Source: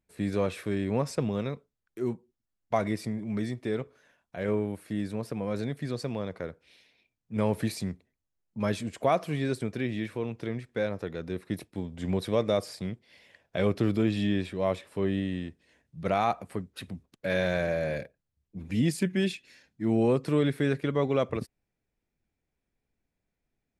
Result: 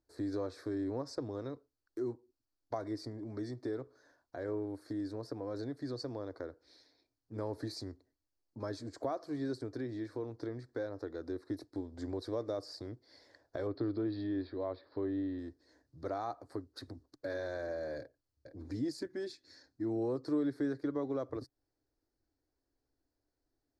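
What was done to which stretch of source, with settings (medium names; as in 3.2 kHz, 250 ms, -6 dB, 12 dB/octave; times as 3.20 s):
13.67–15.39 s: steep low-pass 4.7 kHz 72 dB/octave
17.99–18.61 s: echo throw 460 ms, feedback 15%, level -11.5 dB
whole clip: bass shelf 470 Hz -8 dB; compression 2:1, threshold -45 dBFS; FFT filter 130 Hz 0 dB, 180 Hz -21 dB, 290 Hz +8 dB, 410 Hz 0 dB, 1.7 kHz -7 dB, 2.8 kHz -30 dB, 4.4 kHz +1 dB, 9.6 kHz -16 dB; trim +4.5 dB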